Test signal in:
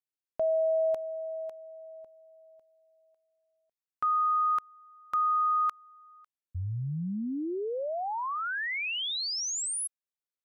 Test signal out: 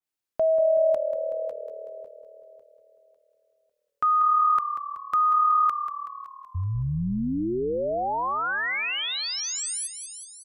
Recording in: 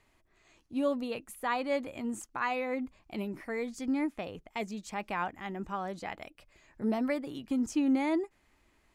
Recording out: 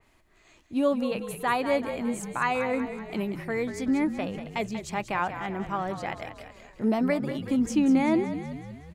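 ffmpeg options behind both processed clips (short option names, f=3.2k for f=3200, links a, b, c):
-filter_complex "[0:a]asplit=7[a][b][c][d][e][f][g];[b]adelay=188,afreqshift=-38,volume=-10dB[h];[c]adelay=376,afreqshift=-76,volume=-15dB[i];[d]adelay=564,afreqshift=-114,volume=-20.1dB[j];[e]adelay=752,afreqshift=-152,volume=-25.1dB[k];[f]adelay=940,afreqshift=-190,volume=-30.1dB[l];[g]adelay=1128,afreqshift=-228,volume=-35.2dB[m];[a][h][i][j][k][l][m]amix=inputs=7:normalize=0,adynamicequalizer=threshold=0.00501:dfrequency=2700:dqfactor=0.7:tfrequency=2700:tqfactor=0.7:attack=5:release=100:ratio=0.375:range=2:mode=cutabove:tftype=highshelf,volume=5.5dB"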